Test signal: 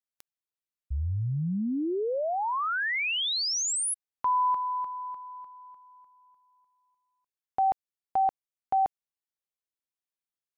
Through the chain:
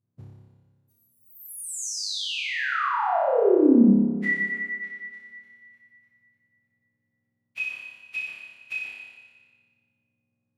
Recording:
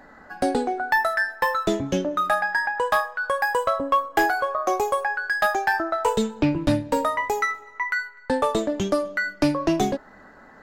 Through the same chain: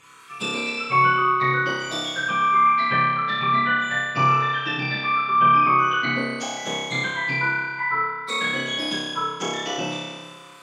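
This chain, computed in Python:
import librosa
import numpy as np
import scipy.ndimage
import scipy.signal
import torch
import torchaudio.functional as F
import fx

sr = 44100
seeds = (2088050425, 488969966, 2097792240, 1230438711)

y = fx.octave_mirror(x, sr, pivot_hz=1400.0)
y = fx.env_lowpass_down(y, sr, base_hz=1500.0, full_db=-21.5)
y = fx.room_flutter(y, sr, wall_m=5.1, rt60_s=1.4)
y = fx.rev_freeverb(y, sr, rt60_s=1.9, hf_ratio=0.8, predelay_ms=70, drr_db=13.0)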